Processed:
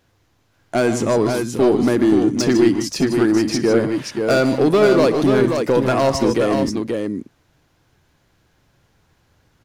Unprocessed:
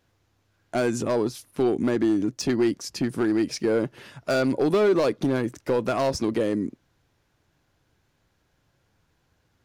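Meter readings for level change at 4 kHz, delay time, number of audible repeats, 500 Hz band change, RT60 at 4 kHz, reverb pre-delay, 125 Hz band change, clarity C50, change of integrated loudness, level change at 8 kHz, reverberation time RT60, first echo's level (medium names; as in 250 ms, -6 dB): +8.0 dB, 59 ms, 4, +7.5 dB, no reverb, no reverb, +8.5 dB, no reverb, +7.5 dB, +8.0 dB, no reverb, -19.5 dB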